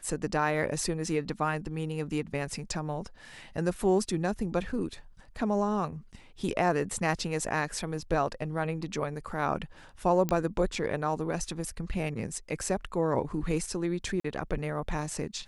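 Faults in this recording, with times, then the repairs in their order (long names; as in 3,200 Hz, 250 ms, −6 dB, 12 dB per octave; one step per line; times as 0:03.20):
0:10.29: click −15 dBFS
0:14.20–0:14.24: drop-out 44 ms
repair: click removal
repair the gap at 0:14.20, 44 ms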